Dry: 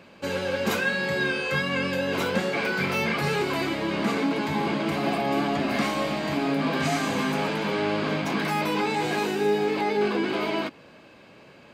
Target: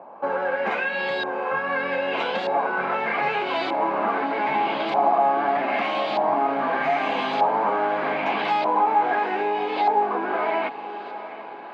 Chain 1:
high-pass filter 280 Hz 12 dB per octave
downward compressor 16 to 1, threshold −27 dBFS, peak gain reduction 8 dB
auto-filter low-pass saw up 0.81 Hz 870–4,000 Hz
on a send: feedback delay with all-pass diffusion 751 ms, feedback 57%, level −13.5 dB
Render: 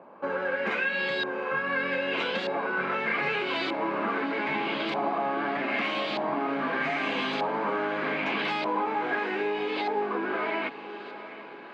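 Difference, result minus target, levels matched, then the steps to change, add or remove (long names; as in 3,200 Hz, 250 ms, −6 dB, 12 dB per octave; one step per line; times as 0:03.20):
1,000 Hz band −4.0 dB
add after downward compressor: parametric band 770 Hz +12.5 dB 0.8 octaves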